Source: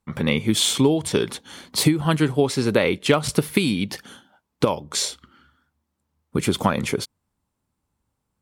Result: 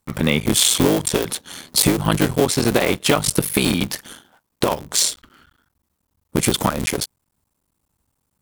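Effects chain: cycle switcher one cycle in 3, muted; high shelf 6900 Hz +11 dB; in parallel at +1.5 dB: limiter -10 dBFS, peak gain reduction 7 dB; on the sum: gain -2.5 dB

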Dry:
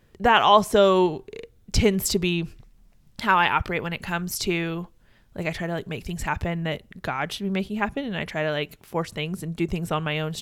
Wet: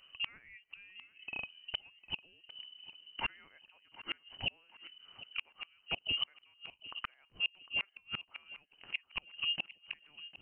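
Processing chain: inverted band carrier 3000 Hz; flipped gate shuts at -19 dBFS, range -37 dB; thinning echo 0.753 s, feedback 38%, high-pass 170 Hz, level -16 dB; gain -3 dB

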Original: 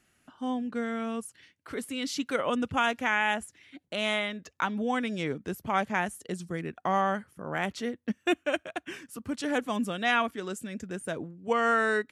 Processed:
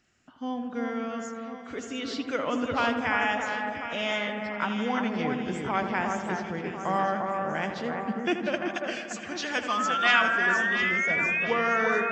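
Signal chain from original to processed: nonlinear frequency compression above 3200 Hz 1.5:1; 8.65–10.22 tilt shelf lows -9 dB, about 850 Hz; darkening echo 81 ms, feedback 78%, low-pass 2700 Hz, level -9 dB; 9.68–11.45 painted sound rise 1200–2600 Hz -27 dBFS; echo with dull and thin repeats by turns 0.348 s, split 2000 Hz, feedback 66%, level -4 dB; gain -1 dB

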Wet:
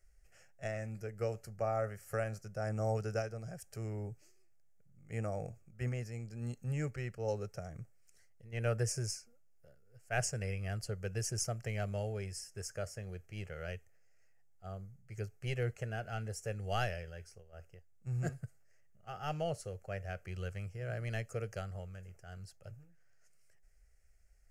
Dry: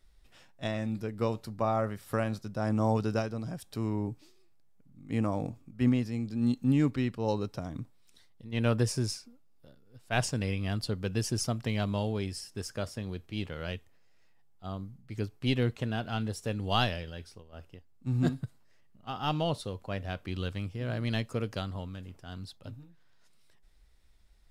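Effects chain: bell 6600 Hz +8.5 dB 0.65 oct; fixed phaser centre 1000 Hz, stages 6; gain -3.5 dB

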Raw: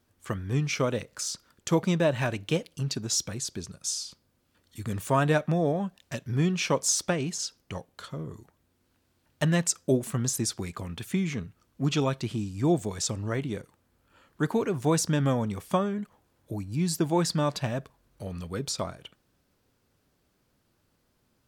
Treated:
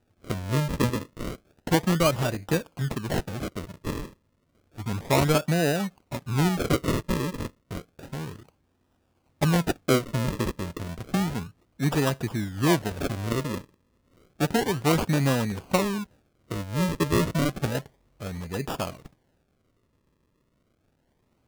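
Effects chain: median filter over 3 samples; decimation with a swept rate 40×, swing 100% 0.31 Hz; gain +2 dB

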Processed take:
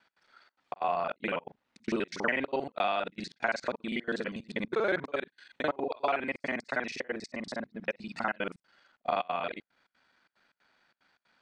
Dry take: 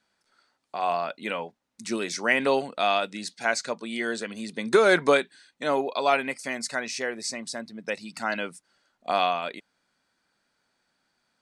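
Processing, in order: local time reversal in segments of 40 ms; LPF 3000 Hz 12 dB/oct; compressor 10:1, threshold -24 dBFS, peak gain reduction 10 dB; step gate "x.xxxx.x" 184 bpm -24 dB; mismatched tape noise reduction encoder only

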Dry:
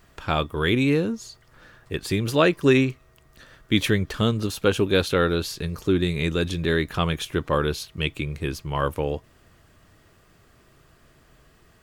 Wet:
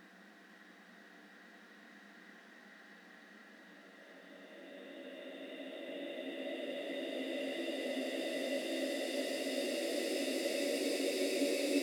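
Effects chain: frequency shift +180 Hz; Paulstretch 23×, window 0.50 s, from 1.56; gain -7.5 dB

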